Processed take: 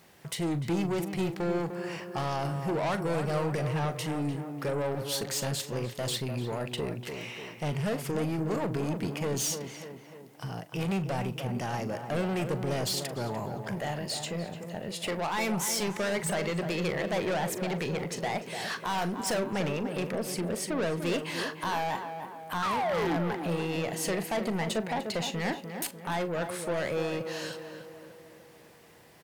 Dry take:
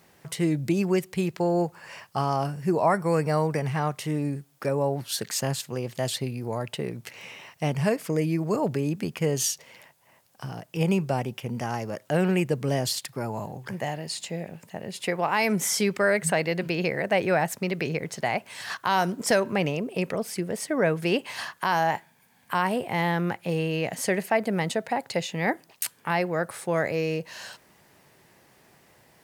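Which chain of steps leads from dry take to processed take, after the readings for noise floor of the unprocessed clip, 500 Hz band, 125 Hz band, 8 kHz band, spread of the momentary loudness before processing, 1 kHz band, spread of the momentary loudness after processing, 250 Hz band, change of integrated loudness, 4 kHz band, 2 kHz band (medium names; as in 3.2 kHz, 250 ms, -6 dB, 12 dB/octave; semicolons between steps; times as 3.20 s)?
-60 dBFS, -5.0 dB, -4.0 dB, -3.5 dB, 10 LU, -5.0 dB, 7 LU, -4.0 dB, -4.5 dB, -1.5 dB, -5.5 dB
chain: peaking EQ 3.4 kHz +2.5 dB; painted sound fall, 22.62–23.17 s, 270–1400 Hz -23 dBFS; saturation -27 dBFS, distortion -7 dB; doubling 41 ms -13.5 dB; tape echo 298 ms, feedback 64%, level -5 dB, low-pass 1.4 kHz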